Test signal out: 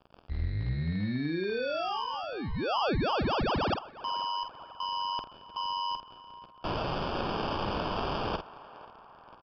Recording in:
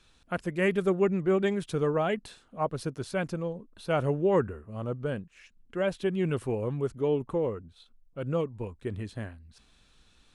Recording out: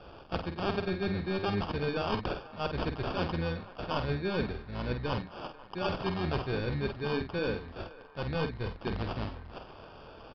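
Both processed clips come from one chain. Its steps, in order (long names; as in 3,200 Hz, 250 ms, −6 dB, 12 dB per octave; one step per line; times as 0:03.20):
sub-octave generator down 1 octave, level −3 dB
high shelf with overshoot 2,100 Hz +12 dB, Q 3
reversed playback
downward compressor 10 to 1, threshold −28 dBFS
reversed playback
surface crackle 520 per second −44 dBFS
decimation without filtering 22×
double-tracking delay 49 ms −8 dB
feedback echo with a band-pass in the loop 492 ms, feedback 65%, band-pass 1,100 Hz, level −16 dB
downsampling to 11,025 Hz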